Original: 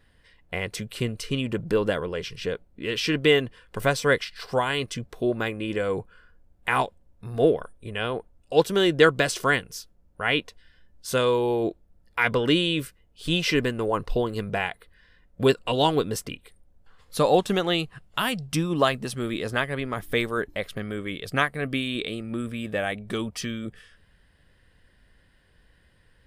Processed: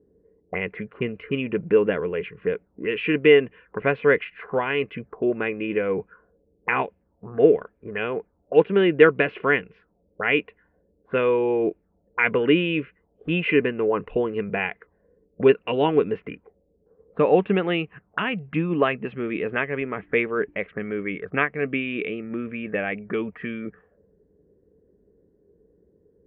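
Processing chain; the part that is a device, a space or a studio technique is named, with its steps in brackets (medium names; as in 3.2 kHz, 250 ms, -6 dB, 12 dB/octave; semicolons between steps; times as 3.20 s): envelope filter bass rig (touch-sensitive low-pass 390–2600 Hz up, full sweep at -27.5 dBFS; cabinet simulation 64–2300 Hz, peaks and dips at 110 Hz -5 dB, 190 Hz +7 dB, 300 Hz +5 dB, 430 Hz +9 dB); trim -3 dB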